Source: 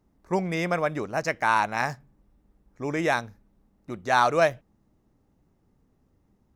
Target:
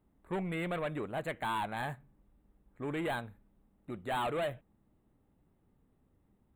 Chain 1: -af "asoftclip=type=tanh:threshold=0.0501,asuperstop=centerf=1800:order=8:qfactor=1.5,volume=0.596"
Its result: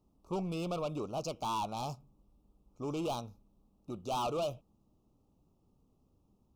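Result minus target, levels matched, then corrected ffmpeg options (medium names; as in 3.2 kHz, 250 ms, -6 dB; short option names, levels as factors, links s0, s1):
2 kHz band -12.5 dB
-af "asoftclip=type=tanh:threshold=0.0501,asuperstop=centerf=5500:order=8:qfactor=1.5,volume=0.596"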